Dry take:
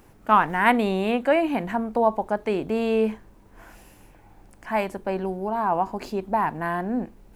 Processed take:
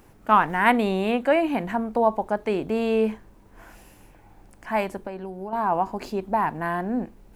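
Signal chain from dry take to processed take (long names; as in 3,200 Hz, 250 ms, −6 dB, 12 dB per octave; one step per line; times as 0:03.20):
0:05.00–0:05.53: downward compressor 6 to 1, threshold −31 dBFS, peak gain reduction 9.5 dB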